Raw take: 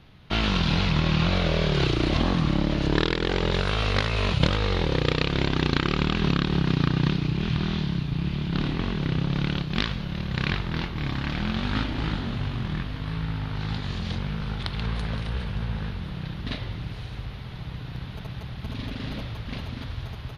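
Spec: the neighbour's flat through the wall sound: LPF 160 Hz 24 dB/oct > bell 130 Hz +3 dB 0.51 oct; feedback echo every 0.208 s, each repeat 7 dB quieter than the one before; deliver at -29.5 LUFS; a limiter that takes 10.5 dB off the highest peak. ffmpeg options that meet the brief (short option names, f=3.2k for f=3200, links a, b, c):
-af "alimiter=limit=-14.5dB:level=0:latency=1,lowpass=f=160:w=0.5412,lowpass=f=160:w=1.3066,equalizer=f=130:t=o:w=0.51:g=3,aecho=1:1:208|416|624|832|1040:0.447|0.201|0.0905|0.0407|0.0183,volume=0.5dB"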